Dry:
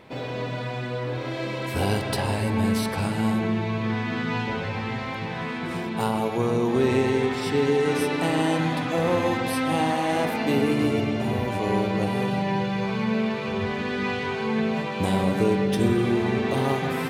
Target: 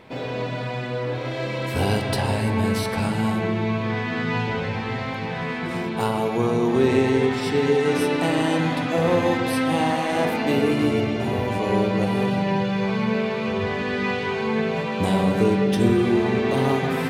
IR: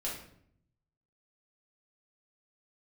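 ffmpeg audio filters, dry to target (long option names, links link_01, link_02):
-filter_complex "[0:a]asplit=2[link_01][link_02];[1:a]atrim=start_sample=2205,lowpass=9000[link_03];[link_02][link_03]afir=irnorm=-1:irlink=0,volume=-9.5dB[link_04];[link_01][link_04]amix=inputs=2:normalize=0"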